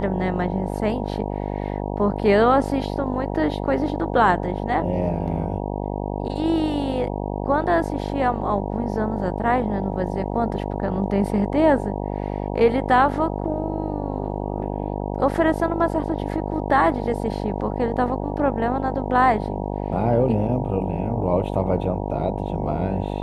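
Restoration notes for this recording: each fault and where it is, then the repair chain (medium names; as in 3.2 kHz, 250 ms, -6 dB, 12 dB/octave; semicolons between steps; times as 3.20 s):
buzz 50 Hz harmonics 19 -27 dBFS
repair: de-hum 50 Hz, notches 19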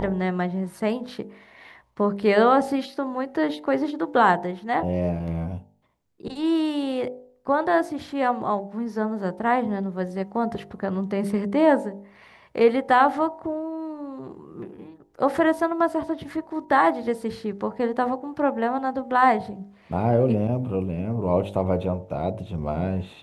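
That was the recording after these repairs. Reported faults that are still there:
nothing left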